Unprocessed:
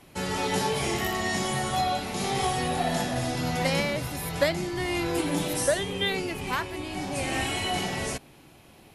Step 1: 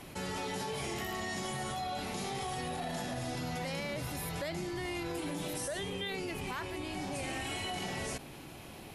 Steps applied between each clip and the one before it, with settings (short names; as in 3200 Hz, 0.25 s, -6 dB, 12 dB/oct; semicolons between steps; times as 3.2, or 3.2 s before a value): limiter -22 dBFS, peak gain reduction 9 dB; fast leveller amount 50%; gain -8.5 dB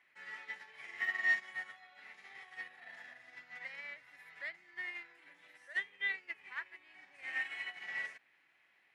band-pass 1900 Hz, Q 5.4; upward expander 2.5:1, over -56 dBFS; gain +15 dB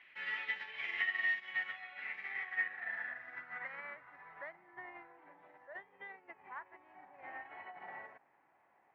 compressor 4:1, threshold -42 dBFS, peak gain reduction 13.5 dB; low-pass sweep 3000 Hz -> 870 Hz, 1.38–4.83; gain +5 dB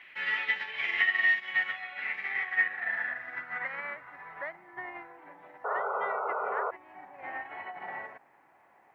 painted sound noise, 5.64–6.71, 390–1500 Hz -41 dBFS; gain +9 dB